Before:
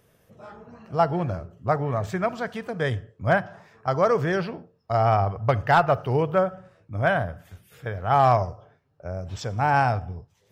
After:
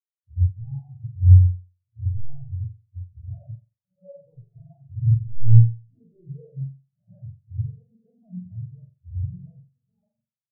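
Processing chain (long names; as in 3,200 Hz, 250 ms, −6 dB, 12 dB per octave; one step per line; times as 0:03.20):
played backwards from end to start
in parallel at −9 dB: sample-rate reduction 2,500 Hz
on the sum: treble cut that deepens with the level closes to 660 Hz, closed at −15 dBFS
sine wavefolder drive 10 dB, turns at −8 dBFS
downward compressor 12 to 1, threshold −23 dBFS, peak gain reduction 13.5 dB
low-shelf EQ 130 Hz +11 dB
mains-hum notches 50/100/150 Hz
on a send: flutter between parallel walls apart 7.6 metres, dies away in 1.3 s
on the sum: every bin expanded away from the loudest bin 4 to 1
level +3 dB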